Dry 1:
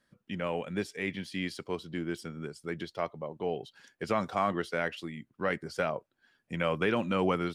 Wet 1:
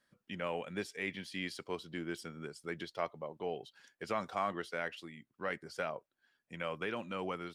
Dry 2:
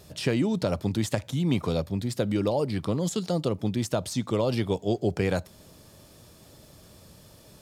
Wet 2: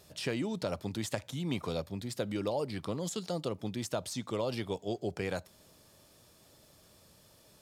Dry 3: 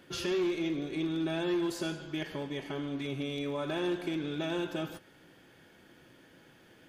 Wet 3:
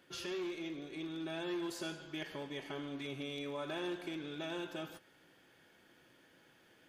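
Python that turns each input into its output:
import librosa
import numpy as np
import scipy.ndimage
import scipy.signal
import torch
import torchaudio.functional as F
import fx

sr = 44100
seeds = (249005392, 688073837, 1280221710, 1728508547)

y = fx.low_shelf(x, sr, hz=360.0, db=-7.0)
y = fx.rider(y, sr, range_db=4, speed_s=2.0)
y = y * 10.0 ** (-5.0 / 20.0)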